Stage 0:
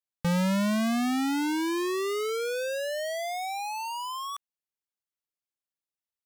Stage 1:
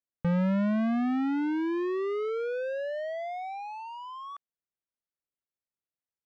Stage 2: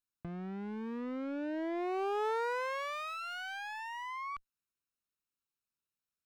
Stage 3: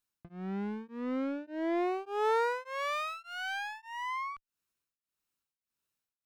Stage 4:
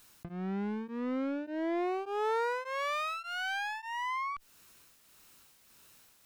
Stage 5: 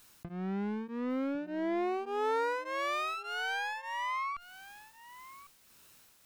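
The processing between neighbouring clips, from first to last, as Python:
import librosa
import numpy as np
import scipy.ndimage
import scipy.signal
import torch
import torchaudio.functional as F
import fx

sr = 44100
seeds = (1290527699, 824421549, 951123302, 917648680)

y1 = scipy.signal.sosfilt(scipy.signal.butter(2, 1500.0, 'lowpass', fs=sr, output='sos'), x)
y1 = fx.peak_eq(y1, sr, hz=950.0, db=-5.5, octaves=0.67)
y2 = fx.lower_of_two(y1, sr, delay_ms=0.74)
y2 = fx.over_compress(y2, sr, threshold_db=-34.0, ratio=-1.0)
y2 = y2 * librosa.db_to_amplitude(-2.5)
y3 = y2 * np.abs(np.cos(np.pi * 1.7 * np.arange(len(y2)) / sr))
y3 = y3 * librosa.db_to_amplitude(6.0)
y4 = fx.env_flatten(y3, sr, amount_pct=50)
y4 = y4 * librosa.db_to_amplitude(-3.0)
y5 = y4 + 10.0 ** (-17.0 / 20.0) * np.pad(y4, (int(1101 * sr / 1000.0), 0))[:len(y4)]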